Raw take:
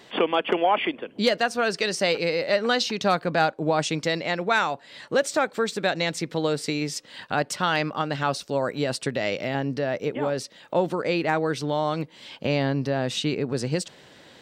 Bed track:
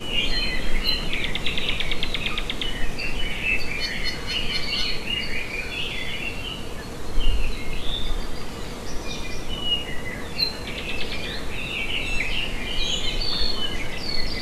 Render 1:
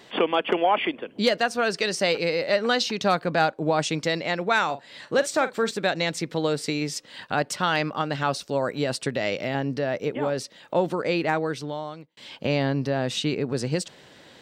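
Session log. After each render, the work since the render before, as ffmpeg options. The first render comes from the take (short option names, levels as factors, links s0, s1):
-filter_complex "[0:a]asettb=1/sr,asplit=3[s0][s1][s2];[s0]atrim=end=4.644[s3];[s1]atrim=start=4.64:end=5.71,asetpts=PTS-STARTPTS,afade=t=in:d=0.004:c=qsin,afade=t=out:st=1.066:d=0.004:c=qsin,asplit=2[s4][s5];[s5]adelay=44,volume=0.224[s6];[s4][s6]amix=inputs=2:normalize=0,atrim=end_sample=47187[s7];[s2]atrim=start=5.706[s8];[s3][s7]acrossfade=d=0.004:c1=hsin:c2=qsin[s9];[s9][s8]acrossfade=d=0.004:c1=qsin:c2=hsin,asplit=2[s10][s11];[s10]atrim=end=12.17,asetpts=PTS-STARTPTS,afade=t=out:st=11.27:d=0.9[s12];[s11]atrim=start=12.17,asetpts=PTS-STARTPTS,afade=t=in:d=0.004:c=hsin[s13];[s12][s13]concat=n=2:v=0:a=1"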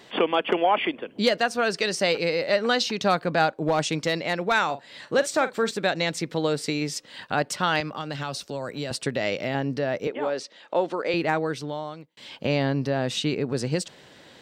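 -filter_complex "[0:a]asettb=1/sr,asplit=3[s0][s1][s2];[s0]atrim=end=3.564[s3];[s1]atrim=start=3.56:end=4.54,asetpts=PTS-STARTPTS,afade=t=in:d=0.004:c=qsin,afade=t=out:st=0.976:d=0.004:c=qsin,asoftclip=type=hard:threshold=0.178[s4];[s2]atrim=start=4.536[s5];[s3][s4]acrossfade=d=0.004:c1=hsin:c2=qsin[s6];[s6][s5]acrossfade=d=0.004:c1=qsin:c2=hsin,asettb=1/sr,asplit=3[s7][s8][s9];[s7]atrim=end=7.804[s10];[s8]atrim=start=7.8:end=8.91,asetpts=PTS-STARTPTS,afade=t=in:d=0.004:c=qsin,afade=t=out:st=1.106:d=0.004:c=qsin,acrossover=split=120|3000[s11][s12][s13];[s12]acompressor=threshold=0.0282:ratio=2.5:attack=3.2:release=140:knee=2.83:detection=peak[s14];[s11][s14][s13]amix=inputs=3:normalize=0[s15];[s9]atrim=start=8.906[s16];[s10][s15]acrossfade=d=0.004:c1=hsin:c2=qsin[s17];[s17][s16]acrossfade=d=0.004:c1=qsin:c2=hsin,asettb=1/sr,asplit=3[s18][s19][s20];[s18]atrim=end=10.074[s21];[s19]atrim=start=10.07:end=11.14,asetpts=PTS-STARTPTS,afade=t=in:d=0.004:c=qsin,afade=t=out:st=1.066:d=0.004:c=qsin,highpass=320,lowpass=6300[s22];[s20]atrim=start=11.136[s23];[s21][s22]acrossfade=d=0.004:c1=hsin:c2=qsin[s24];[s24][s23]acrossfade=d=0.004:c1=qsin:c2=hsin"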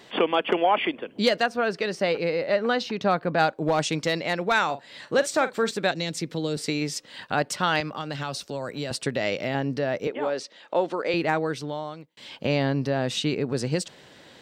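-filter_complex "[0:a]asettb=1/sr,asplit=3[s0][s1][s2];[s0]atrim=end=1.464[s3];[s1]atrim=start=1.46:end=3.39,asetpts=PTS-STARTPTS,afade=t=in:d=0.004:c=qsin,afade=t=out:st=1.926:d=0.004:c=qsin,equalizer=f=8900:t=o:w=2.3:g=-13[s4];[s2]atrim=start=3.386[s5];[s3][s4]acrossfade=d=0.004:c1=hsin:c2=qsin[s6];[s6][s5]acrossfade=d=0.004:c1=qsin:c2=hsin,asettb=1/sr,asplit=3[s7][s8][s9];[s7]atrim=end=5.914[s10];[s8]atrim=start=5.91:end=6.57,asetpts=PTS-STARTPTS,afade=t=in:d=0.004:c=qsin,afade=t=out:st=0.656:d=0.004:c=qsin,acrossover=split=440|3000[s11][s12][s13];[s12]acompressor=threshold=0.00501:ratio=2:attack=3.2:release=140:knee=2.83:detection=peak[s14];[s11][s14][s13]amix=inputs=3:normalize=0[s15];[s9]atrim=start=6.566[s16];[s10][s15]acrossfade=d=0.004:c1=hsin:c2=qsin[s17];[s17][s16]acrossfade=d=0.004:c1=qsin:c2=hsin"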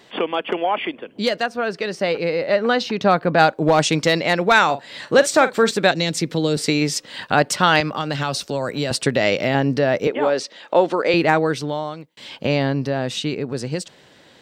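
-af "dynaudnorm=f=240:g=21:m=3.76"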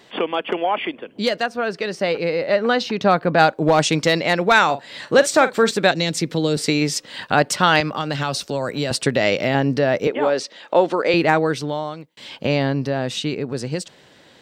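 -af anull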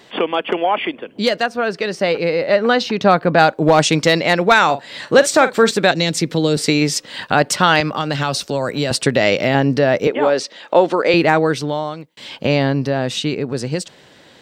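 -af "volume=1.5,alimiter=limit=0.891:level=0:latency=1"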